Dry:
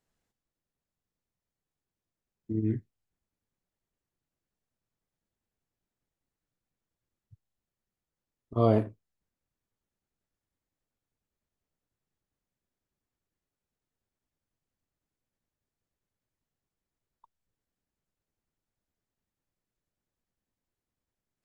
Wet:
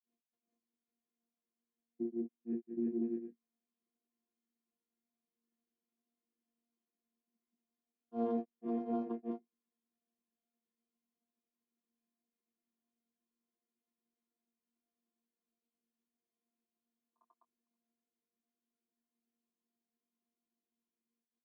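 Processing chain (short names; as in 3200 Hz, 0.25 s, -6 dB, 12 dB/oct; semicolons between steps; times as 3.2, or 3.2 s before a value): chord vocoder bare fifth, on A#3; doubler 21 ms -10.5 dB; on a send: tapped delay 99/105/274 ms -3.5/-17/-14 dB; on the sum: limiter -24.5 dBFS, peak gain reduction 11 dB; grains 0.181 s, grains 18/s, spray 0.539 s, pitch spread up and down by 0 st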